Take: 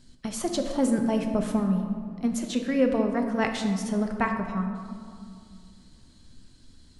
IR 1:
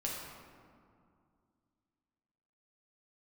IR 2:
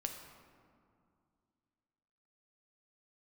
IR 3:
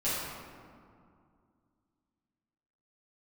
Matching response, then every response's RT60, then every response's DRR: 2; 2.3, 2.3, 2.3 seconds; −4.0, 3.5, −12.5 decibels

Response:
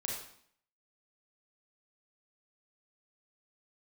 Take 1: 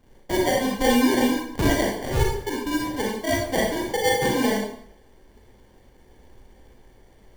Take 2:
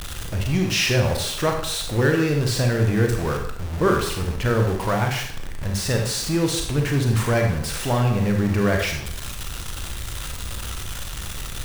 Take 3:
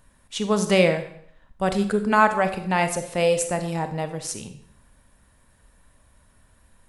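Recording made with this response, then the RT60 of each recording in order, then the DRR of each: 1; 0.60, 0.60, 0.60 seconds; −2.0, 2.5, 8.0 decibels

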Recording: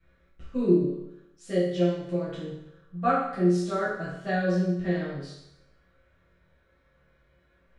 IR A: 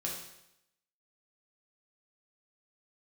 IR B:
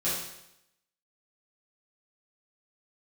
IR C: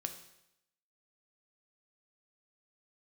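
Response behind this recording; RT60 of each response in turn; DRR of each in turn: B; 0.80, 0.80, 0.80 seconds; −3.0, −11.5, 6.0 decibels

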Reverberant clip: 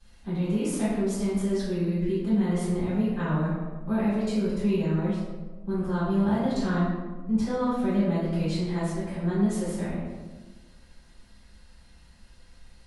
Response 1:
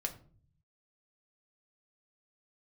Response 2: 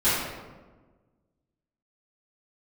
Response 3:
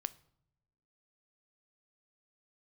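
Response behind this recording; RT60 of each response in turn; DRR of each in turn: 2; 0.45 s, 1.3 s, non-exponential decay; 3.0, −17.0, 14.5 decibels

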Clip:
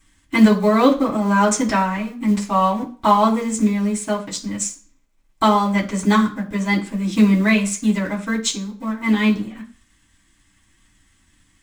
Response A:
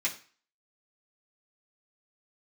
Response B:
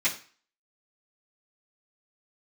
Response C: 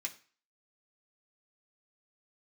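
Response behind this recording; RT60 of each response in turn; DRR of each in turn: A; 0.40, 0.40, 0.40 seconds; −6.5, −12.5, 0.0 decibels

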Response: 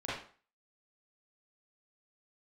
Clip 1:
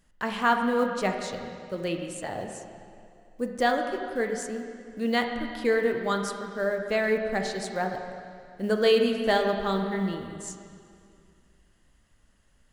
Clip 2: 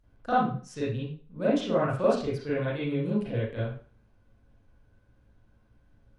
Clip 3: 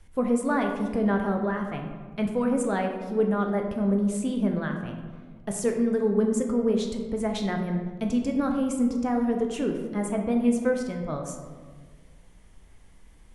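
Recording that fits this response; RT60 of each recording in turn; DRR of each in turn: 2; 2.4, 0.45, 1.6 seconds; 3.5, −10.0, 3.0 decibels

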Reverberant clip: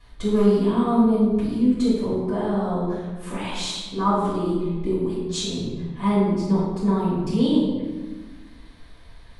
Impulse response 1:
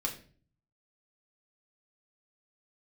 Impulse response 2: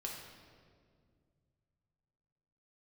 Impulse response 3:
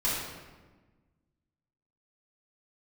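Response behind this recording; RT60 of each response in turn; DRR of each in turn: 3; 0.45, 2.1, 1.3 seconds; −1.0, −2.0, −10.0 decibels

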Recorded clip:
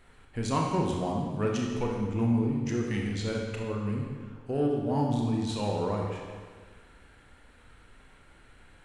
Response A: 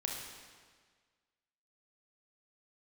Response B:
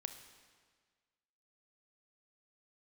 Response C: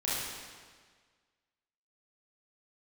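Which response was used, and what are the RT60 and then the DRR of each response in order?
A; 1.6, 1.6, 1.6 seconds; −1.0, 7.5, −9.0 decibels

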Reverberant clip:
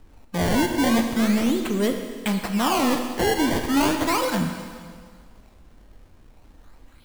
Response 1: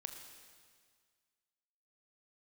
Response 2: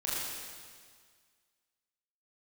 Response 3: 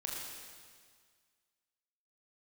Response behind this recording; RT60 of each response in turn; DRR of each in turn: 1; 1.8, 1.8, 1.8 seconds; 4.5, −8.5, −3.5 decibels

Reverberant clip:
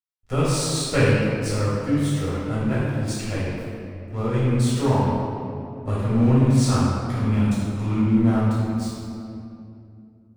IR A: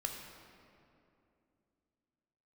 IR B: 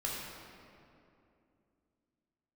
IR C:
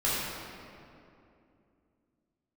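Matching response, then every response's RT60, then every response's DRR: C; 2.7, 2.7, 2.7 seconds; 2.0, −4.5, −9.5 decibels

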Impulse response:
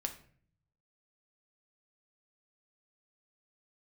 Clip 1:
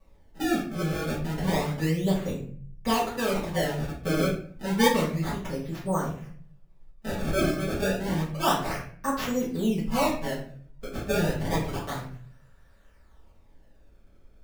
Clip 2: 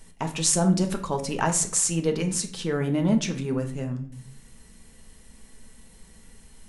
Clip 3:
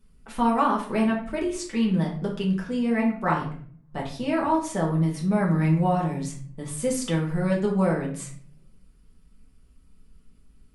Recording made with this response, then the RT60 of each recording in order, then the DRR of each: 2; 0.50, 0.50, 0.50 seconds; −9.5, 4.5, −3.0 decibels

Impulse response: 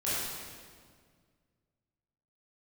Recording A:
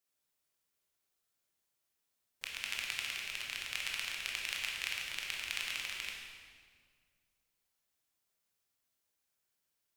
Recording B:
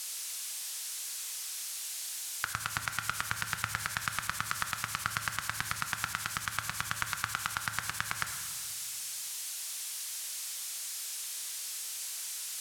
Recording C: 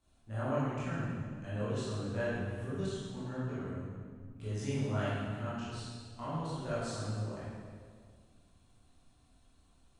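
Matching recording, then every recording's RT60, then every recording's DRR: C; 1.9, 1.9, 1.9 seconds; −2.0, 6.0, −11.5 decibels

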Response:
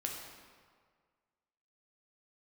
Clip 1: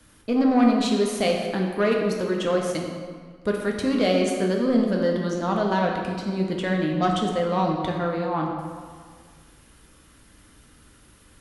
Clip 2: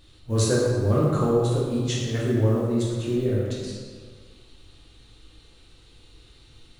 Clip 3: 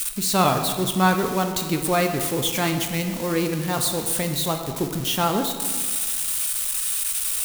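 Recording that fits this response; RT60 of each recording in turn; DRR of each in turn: 1; 1.8, 1.8, 1.8 seconds; −0.5, −6.5, 4.5 decibels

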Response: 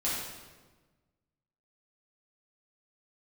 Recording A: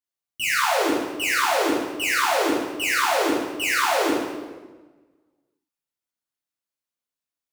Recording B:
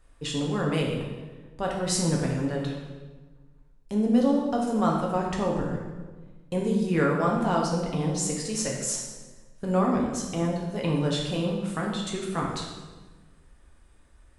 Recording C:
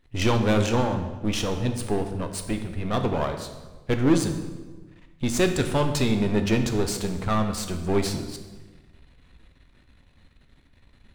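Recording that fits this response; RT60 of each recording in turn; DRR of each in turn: A; 1.3, 1.3, 1.3 seconds; −8.5, −2.0, 5.5 decibels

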